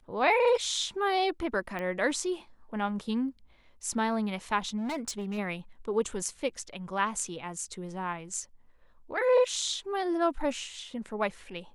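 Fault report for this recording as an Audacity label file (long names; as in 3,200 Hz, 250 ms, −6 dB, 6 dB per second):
1.790000	1.790000	click −23 dBFS
4.770000	5.390000	clipping −30 dBFS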